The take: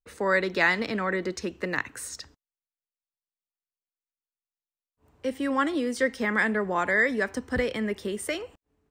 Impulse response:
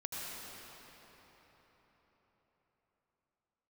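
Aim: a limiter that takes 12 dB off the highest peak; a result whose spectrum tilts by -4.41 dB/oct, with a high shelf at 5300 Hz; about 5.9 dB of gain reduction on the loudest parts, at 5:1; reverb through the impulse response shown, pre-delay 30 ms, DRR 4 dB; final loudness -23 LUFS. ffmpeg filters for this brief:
-filter_complex "[0:a]highshelf=f=5.3k:g=-5,acompressor=threshold=-25dB:ratio=5,alimiter=level_in=1dB:limit=-24dB:level=0:latency=1,volume=-1dB,asplit=2[a][b];[1:a]atrim=start_sample=2205,adelay=30[c];[b][c]afir=irnorm=-1:irlink=0,volume=-6dB[d];[a][d]amix=inputs=2:normalize=0,volume=10.5dB"

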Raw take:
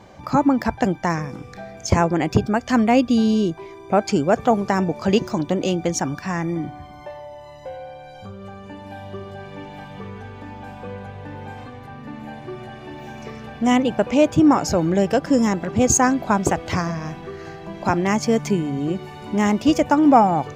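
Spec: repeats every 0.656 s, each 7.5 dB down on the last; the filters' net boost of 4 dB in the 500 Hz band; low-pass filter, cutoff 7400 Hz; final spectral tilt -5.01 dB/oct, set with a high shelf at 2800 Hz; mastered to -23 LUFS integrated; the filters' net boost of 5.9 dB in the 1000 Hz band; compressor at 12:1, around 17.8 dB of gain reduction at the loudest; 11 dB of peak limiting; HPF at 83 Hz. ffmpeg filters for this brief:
-af "highpass=83,lowpass=7.4k,equalizer=f=500:t=o:g=3,equalizer=f=1k:t=o:g=6,highshelf=f=2.8k:g=5,acompressor=threshold=-21dB:ratio=12,alimiter=limit=-18.5dB:level=0:latency=1,aecho=1:1:656|1312|1968|2624|3280:0.422|0.177|0.0744|0.0312|0.0131,volume=6.5dB"

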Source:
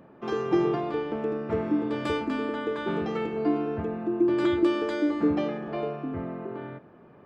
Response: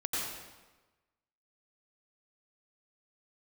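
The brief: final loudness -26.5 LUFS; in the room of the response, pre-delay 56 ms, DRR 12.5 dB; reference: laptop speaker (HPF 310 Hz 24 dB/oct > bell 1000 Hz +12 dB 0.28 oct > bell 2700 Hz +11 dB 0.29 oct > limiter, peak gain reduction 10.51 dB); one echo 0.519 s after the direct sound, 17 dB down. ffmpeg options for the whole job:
-filter_complex "[0:a]aecho=1:1:519:0.141,asplit=2[a][b];[1:a]atrim=start_sample=2205,adelay=56[c];[b][c]afir=irnorm=-1:irlink=0,volume=-18.5dB[d];[a][d]amix=inputs=2:normalize=0,highpass=f=310:w=0.5412,highpass=f=310:w=1.3066,equalizer=f=1k:t=o:w=0.28:g=12,equalizer=f=2.7k:t=o:w=0.29:g=11,volume=6dB,alimiter=limit=-18dB:level=0:latency=1"

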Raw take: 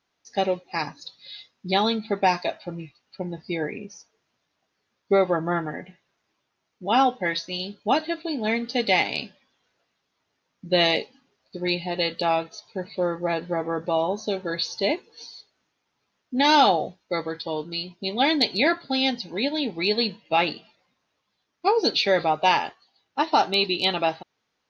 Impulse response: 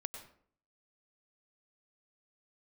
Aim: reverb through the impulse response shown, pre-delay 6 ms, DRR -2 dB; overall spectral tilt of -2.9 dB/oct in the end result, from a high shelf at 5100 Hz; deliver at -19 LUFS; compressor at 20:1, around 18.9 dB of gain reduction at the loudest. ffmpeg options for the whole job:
-filter_complex "[0:a]highshelf=f=5.1k:g=3.5,acompressor=threshold=-33dB:ratio=20,asplit=2[a][b];[1:a]atrim=start_sample=2205,adelay=6[c];[b][c]afir=irnorm=-1:irlink=0,volume=3.5dB[d];[a][d]amix=inputs=2:normalize=0,volume=15.5dB"

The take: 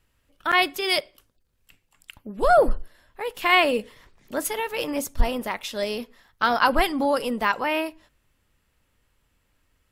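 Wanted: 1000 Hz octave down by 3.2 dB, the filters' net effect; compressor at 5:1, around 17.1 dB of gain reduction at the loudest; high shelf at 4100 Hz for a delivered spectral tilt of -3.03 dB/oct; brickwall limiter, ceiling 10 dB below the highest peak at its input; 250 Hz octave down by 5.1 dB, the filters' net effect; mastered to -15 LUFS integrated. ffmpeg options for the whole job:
-af "equalizer=f=250:t=o:g=-6,equalizer=f=1k:t=o:g=-4.5,highshelf=f=4.1k:g=5,acompressor=threshold=-33dB:ratio=5,volume=22.5dB,alimiter=limit=-3.5dB:level=0:latency=1"

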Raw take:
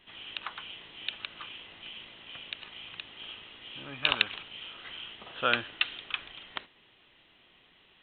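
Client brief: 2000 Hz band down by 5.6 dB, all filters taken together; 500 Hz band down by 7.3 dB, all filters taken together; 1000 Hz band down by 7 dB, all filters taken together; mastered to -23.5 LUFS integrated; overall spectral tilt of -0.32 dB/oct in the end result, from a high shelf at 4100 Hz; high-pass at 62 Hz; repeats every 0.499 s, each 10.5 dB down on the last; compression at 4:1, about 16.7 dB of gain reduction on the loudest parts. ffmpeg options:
-af "highpass=62,equalizer=f=500:t=o:g=-6.5,equalizer=f=1k:t=o:g=-6.5,equalizer=f=2k:t=o:g=-4,highshelf=f=4.1k:g=-6,acompressor=threshold=-47dB:ratio=4,aecho=1:1:499|998|1497:0.299|0.0896|0.0269,volume=25.5dB"

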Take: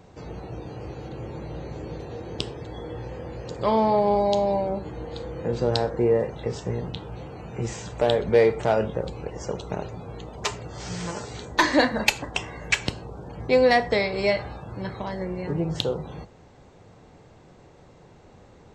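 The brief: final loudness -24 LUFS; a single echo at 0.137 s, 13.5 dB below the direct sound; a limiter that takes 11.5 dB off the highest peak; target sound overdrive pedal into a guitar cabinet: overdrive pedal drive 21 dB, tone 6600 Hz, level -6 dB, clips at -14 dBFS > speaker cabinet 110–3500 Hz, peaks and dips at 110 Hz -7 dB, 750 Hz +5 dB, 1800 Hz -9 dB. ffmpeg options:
-filter_complex "[0:a]alimiter=limit=-16dB:level=0:latency=1,aecho=1:1:137:0.211,asplit=2[a][b];[b]highpass=f=720:p=1,volume=21dB,asoftclip=type=tanh:threshold=-14dB[c];[a][c]amix=inputs=2:normalize=0,lowpass=f=6.6k:p=1,volume=-6dB,highpass=110,equalizer=f=110:t=q:w=4:g=-7,equalizer=f=750:t=q:w=4:g=5,equalizer=f=1.8k:t=q:w=4:g=-9,lowpass=f=3.5k:w=0.5412,lowpass=f=3.5k:w=1.3066"

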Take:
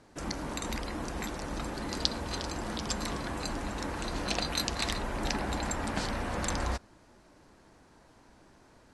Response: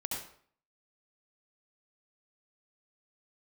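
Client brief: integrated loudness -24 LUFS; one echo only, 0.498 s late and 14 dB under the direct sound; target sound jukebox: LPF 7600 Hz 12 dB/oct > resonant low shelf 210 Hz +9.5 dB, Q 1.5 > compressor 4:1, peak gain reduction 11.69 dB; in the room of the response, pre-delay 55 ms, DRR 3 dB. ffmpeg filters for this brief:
-filter_complex "[0:a]aecho=1:1:498:0.2,asplit=2[a][b];[1:a]atrim=start_sample=2205,adelay=55[c];[b][c]afir=irnorm=-1:irlink=0,volume=-5.5dB[d];[a][d]amix=inputs=2:normalize=0,lowpass=7.6k,lowshelf=f=210:t=q:w=1.5:g=9.5,acompressor=threshold=-30dB:ratio=4,volume=11dB"

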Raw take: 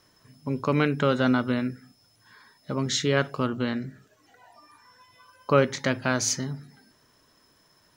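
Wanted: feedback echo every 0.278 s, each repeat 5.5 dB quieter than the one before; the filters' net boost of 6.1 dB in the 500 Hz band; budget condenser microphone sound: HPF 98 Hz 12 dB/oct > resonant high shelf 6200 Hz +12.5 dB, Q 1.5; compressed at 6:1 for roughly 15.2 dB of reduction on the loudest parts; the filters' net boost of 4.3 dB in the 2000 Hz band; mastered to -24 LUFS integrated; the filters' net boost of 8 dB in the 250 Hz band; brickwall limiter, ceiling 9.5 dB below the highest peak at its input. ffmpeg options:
-af "equalizer=f=250:t=o:g=7.5,equalizer=f=500:t=o:g=5,equalizer=f=2k:t=o:g=6.5,acompressor=threshold=-27dB:ratio=6,alimiter=limit=-21.5dB:level=0:latency=1,highpass=98,highshelf=f=6.2k:t=q:w=1.5:g=12.5,aecho=1:1:278|556|834|1112|1390|1668|1946:0.531|0.281|0.149|0.079|0.0419|0.0222|0.0118,volume=8.5dB"

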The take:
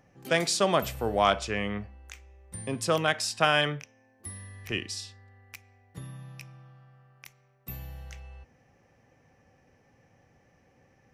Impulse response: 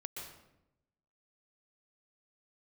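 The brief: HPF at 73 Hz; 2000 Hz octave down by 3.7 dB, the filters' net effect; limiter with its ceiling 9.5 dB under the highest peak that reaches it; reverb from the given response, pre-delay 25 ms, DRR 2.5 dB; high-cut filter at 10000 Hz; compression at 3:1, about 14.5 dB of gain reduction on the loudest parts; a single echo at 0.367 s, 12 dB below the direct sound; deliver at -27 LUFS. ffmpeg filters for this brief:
-filter_complex "[0:a]highpass=73,lowpass=10k,equalizer=f=2k:t=o:g=-5,acompressor=threshold=-40dB:ratio=3,alimiter=level_in=10dB:limit=-24dB:level=0:latency=1,volume=-10dB,aecho=1:1:367:0.251,asplit=2[a][b];[1:a]atrim=start_sample=2205,adelay=25[c];[b][c]afir=irnorm=-1:irlink=0,volume=-1dB[d];[a][d]amix=inputs=2:normalize=0,volume=17dB"

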